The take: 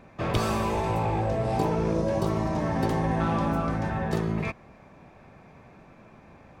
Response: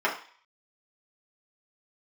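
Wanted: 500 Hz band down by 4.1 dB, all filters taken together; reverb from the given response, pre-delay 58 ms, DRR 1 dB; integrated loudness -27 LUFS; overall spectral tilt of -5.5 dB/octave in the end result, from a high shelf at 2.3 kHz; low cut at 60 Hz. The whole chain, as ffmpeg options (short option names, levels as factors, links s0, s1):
-filter_complex "[0:a]highpass=60,equalizer=f=500:t=o:g=-6,highshelf=f=2300:g=9,asplit=2[s0][s1];[1:a]atrim=start_sample=2205,adelay=58[s2];[s1][s2]afir=irnorm=-1:irlink=0,volume=0.178[s3];[s0][s3]amix=inputs=2:normalize=0,volume=0.841"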